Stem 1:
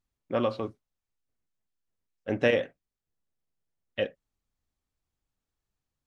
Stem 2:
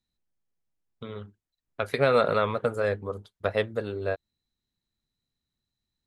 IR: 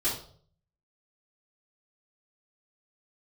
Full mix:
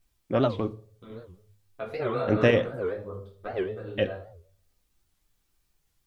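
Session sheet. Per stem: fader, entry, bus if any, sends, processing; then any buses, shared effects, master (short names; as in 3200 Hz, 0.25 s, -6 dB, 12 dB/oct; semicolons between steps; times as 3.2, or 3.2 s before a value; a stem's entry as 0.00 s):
+0.5 dB, 0.00 s, send -21 dB, low shelf 170 Hz +7 dB
-5.5 dB, 0.00 s, send -8 dB, high shelf 3800 Hz -12 dB; requantised 12-bit, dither triangular; ensemble effect; auto duck -7 dB, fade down 0.85 s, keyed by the first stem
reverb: on, RT60 0.55 s, pre-delay 3 ms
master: low shelf 240 Hz +4.5 dB; record warp 78 rpm, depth 250 cents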